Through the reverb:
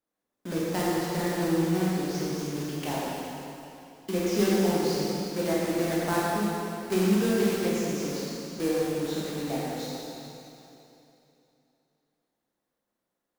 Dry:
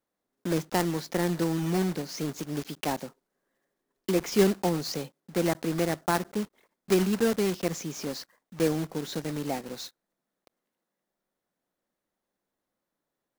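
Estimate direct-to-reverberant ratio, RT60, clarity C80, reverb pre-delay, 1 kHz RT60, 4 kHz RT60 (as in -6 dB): -7.0 dB, 3.0 s, -2.0 dB, 8 ms, 2.9 s, 2.8 s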